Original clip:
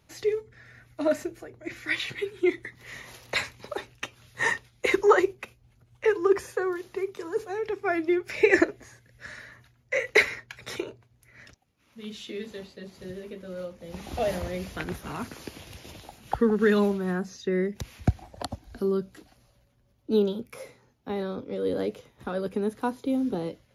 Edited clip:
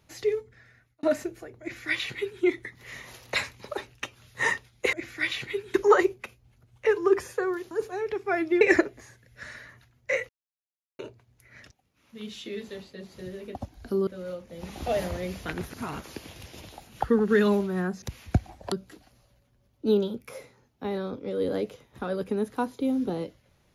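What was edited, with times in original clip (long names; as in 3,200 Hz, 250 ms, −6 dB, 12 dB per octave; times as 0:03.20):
0:00.39–0:01.03: fade out
0:01.61–0:02.42: duplicate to 0:04.93
0:06.90–0:07.28: remove
0:08.18–0:08.44: remove
0:10.12–0:10.82: silence
0:15.01–0:15.35: reverse
0:17.33–0:17.75: remove
0:18.45–0:18.97: move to 0:13.38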